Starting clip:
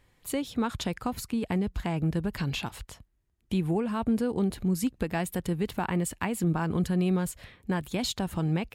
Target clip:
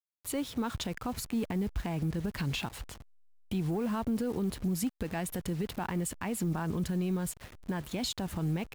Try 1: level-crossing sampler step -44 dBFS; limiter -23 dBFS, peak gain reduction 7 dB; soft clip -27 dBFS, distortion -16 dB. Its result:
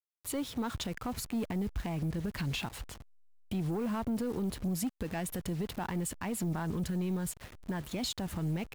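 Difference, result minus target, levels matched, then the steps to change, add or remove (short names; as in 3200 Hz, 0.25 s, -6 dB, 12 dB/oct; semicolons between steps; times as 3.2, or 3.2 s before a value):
soft clip: distortion +10 dB
change: soft clip -20.5 dBFS, distortion -26 dB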